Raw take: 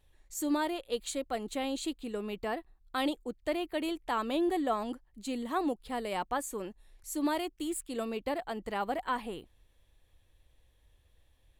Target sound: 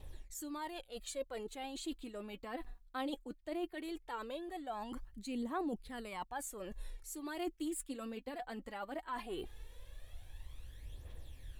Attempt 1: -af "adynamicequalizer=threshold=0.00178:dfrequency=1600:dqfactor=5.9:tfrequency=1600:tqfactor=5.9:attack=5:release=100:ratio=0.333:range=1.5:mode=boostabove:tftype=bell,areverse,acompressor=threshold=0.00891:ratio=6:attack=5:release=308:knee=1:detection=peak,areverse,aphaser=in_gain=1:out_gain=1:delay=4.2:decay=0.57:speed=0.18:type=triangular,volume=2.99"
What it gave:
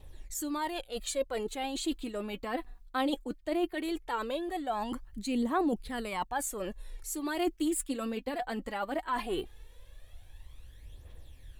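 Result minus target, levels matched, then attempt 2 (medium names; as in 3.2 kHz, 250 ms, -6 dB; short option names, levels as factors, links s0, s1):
compression: peak gain reduction -9 dB
-af "adynamicequalizer=threshold=0.00178:dfrequency=1600:dqfactor=5.9:tfrequency=1600:tqfactor=5.9:attack=5:release=100:ratio=0.333:range=1.5:mode=boostabove:tftype=bell,areverse,acompressor=threshold=0.00251:ratio=6:attack=5:release=308:knee=1:detection=peak,areverse,aphaser=in_gain=1:out_gain=1:delay=4.2:decay=0.57:speed=0.18:type=triangular,volume=2.99"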